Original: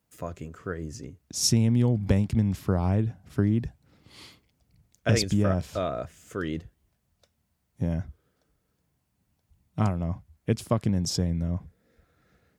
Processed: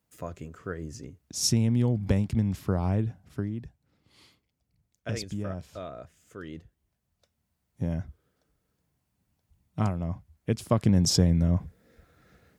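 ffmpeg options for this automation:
-af "volume=13dB,afade=t=out:st=3.09:d=0.42:silence=0.398107,afade=t=in:st=6.45:d=1.42:silence=0.398107,afade=t=in:st=10.6:d=0.41:silence=0.446684"

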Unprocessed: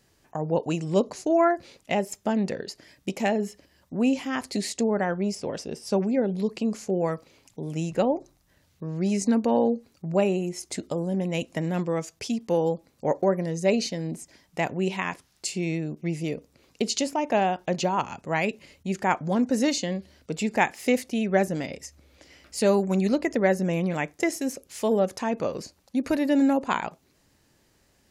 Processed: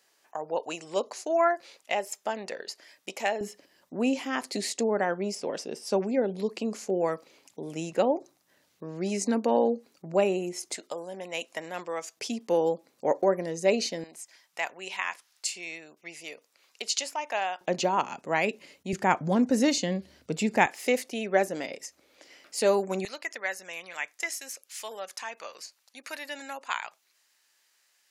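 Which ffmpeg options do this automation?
-af "asetnsamples=n=441:p=0,asendcmd='3.41 highpass f 290;10.74 highpass f 670;12.17 highpass f 300;14.04 highpass f 1000;17.61 highpass f 250;18.93 highpass f 98;20.66 highpass f 370;23.05 highpass f 1400',highpass=620"

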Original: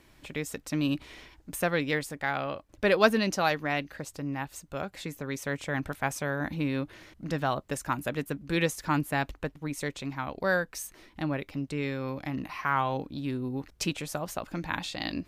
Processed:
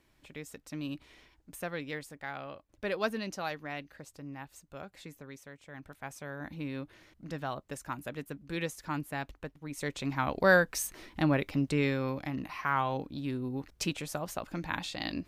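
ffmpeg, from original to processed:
-af "volume=13.5dB,afade=t=out:st=5.11:d=0.45:silence=0.334965,afade=t=in:st=5.56:d=1.14:silence=0.266073,afade=t=in:st=9.66:d=0.61:silence=0.251189,afade=t=out:st=11.74:d=0.57:silence=0.473151"

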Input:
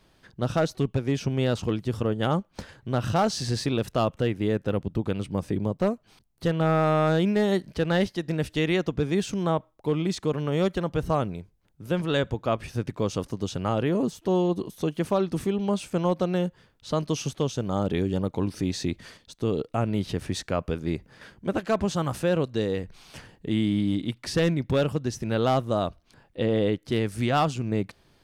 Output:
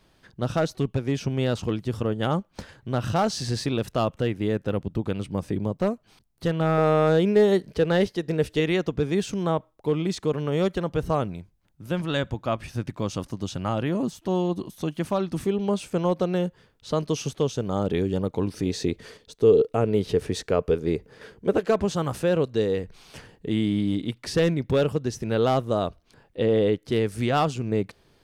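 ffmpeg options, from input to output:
-af "asetnsamples=n=441:p=0,asendcmd='6.78 equalizer g 9.5;8.6 equalizer g 2.5;11.26 equalizer g -6.5;15.45 equalizer g 4.5;18.66 equalizer g 14.5;21.7 equalizer g 5.5',equalizer=f=440:t=o:w=0.38:g=0"

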